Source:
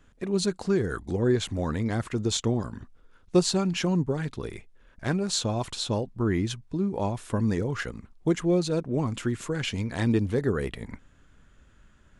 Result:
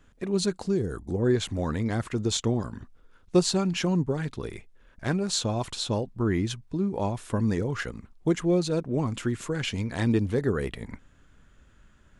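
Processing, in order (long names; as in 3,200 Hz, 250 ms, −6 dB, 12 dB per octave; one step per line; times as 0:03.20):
0:00.63–0:01.23: parametric band 1,200 Hz → 3,600 Hz −11.5 dB 2.1 octaves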